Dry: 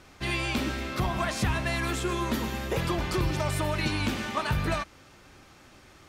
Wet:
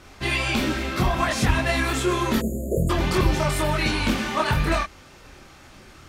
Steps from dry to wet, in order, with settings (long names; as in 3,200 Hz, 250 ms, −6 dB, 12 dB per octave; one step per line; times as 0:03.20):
multi-voice chorus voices 6, 1.3 Hz, delay 25 ms, depth 3 ms
time-frequency box erased 0:02.41–0:02.90, 730–6,600 Hz
level +9 dB